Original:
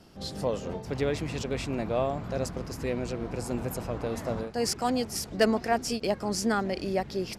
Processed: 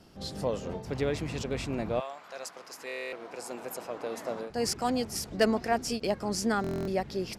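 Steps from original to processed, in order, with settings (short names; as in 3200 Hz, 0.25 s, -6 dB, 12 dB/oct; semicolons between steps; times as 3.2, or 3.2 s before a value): 1.99–4.49 HPF 1100 Hz -> 280 Hz 12 dB/oct; stuck buffer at 2.87/6.62, samples 1024, times 10; gain -1.5 dB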